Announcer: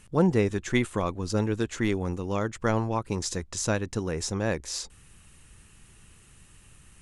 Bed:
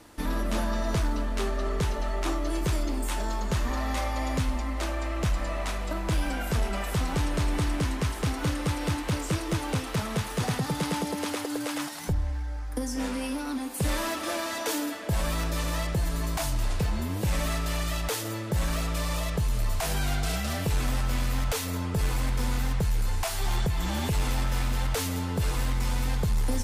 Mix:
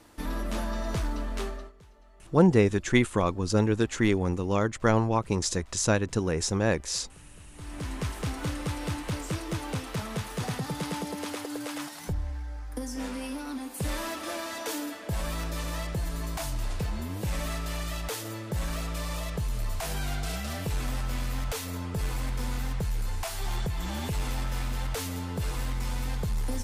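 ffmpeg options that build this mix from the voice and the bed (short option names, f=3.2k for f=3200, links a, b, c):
-filter_complex "[0:a]adelay=2200,volume=2.5dB[a];[1:a]volume=19.5dB,afade=t=out:st=1.41:d=0.31:silence=0.0668344,afade=t=in:st=7.53:d=0.5:silence=0.0707946[b];[a][b]amix=inputs=2:normalize=0"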